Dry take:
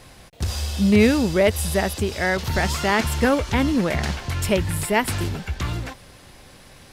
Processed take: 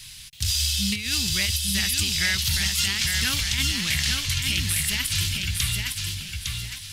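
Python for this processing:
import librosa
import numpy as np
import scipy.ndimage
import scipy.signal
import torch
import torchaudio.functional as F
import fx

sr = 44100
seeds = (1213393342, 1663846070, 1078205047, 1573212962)

y = fx.curve_eq(x, sr, hz=(130.0, 530.0, 3100.0), db=(0, -27, 13))
y = fx.over_compress(y, sr, threshold_db=-20.0, ratio=-0.5)
y = fx.echo_feedback(y, sr, ms=857, feedback_pct=27, wet_db=-4.5)
y = y * librosa.db_to_amplitude(-4.0)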